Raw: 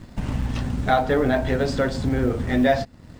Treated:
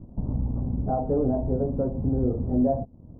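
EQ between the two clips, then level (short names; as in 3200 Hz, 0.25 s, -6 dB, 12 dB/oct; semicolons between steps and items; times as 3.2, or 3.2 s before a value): Bessel low-pass 510 Hz, order 8; -1.5 dB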